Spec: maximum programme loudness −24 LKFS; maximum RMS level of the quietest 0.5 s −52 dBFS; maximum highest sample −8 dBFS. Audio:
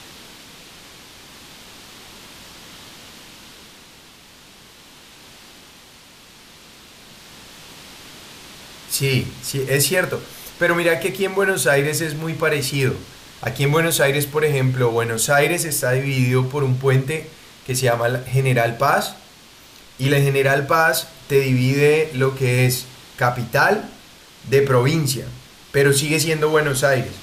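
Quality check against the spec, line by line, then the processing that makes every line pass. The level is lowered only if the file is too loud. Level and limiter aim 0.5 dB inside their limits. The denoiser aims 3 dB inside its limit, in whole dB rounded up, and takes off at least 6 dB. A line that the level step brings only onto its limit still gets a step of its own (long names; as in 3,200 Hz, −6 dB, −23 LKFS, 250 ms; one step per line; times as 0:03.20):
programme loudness −19.0 LKFS: out of spec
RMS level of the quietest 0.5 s −46 dBFS: out of spec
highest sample −5.0 dBFS: out of spec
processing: broadband denoise 6 dB, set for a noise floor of −46 dBFS
level −5.5 dB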